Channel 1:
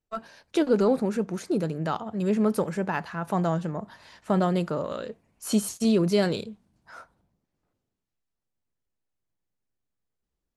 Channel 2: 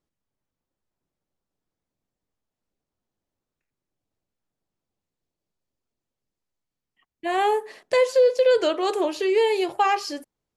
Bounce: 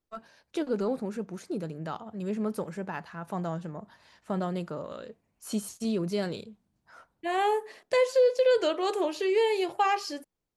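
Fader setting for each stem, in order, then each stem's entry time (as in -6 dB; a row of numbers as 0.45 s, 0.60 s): -7.5 dB, -4.5 dB; 0.00 s, 0.00 s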